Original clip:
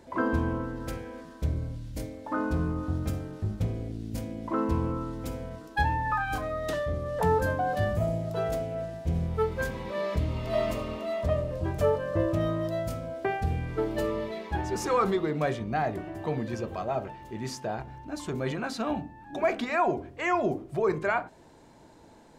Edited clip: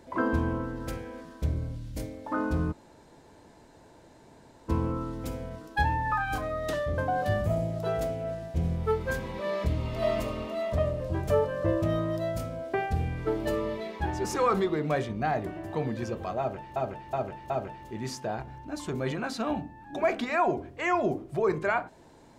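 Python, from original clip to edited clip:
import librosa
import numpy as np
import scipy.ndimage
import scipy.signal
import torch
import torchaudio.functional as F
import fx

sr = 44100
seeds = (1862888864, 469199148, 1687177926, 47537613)

y = fx.edit(x, sr, fx.room_tone_fill(start_s=2.72, length_s=1.97, crossfade_s=0.02),
    fx.cut(start_s=6.98, length_s=0.51),
    fx.repeat(start_s=16.9, length_s=0.37, count=4), tone=tone)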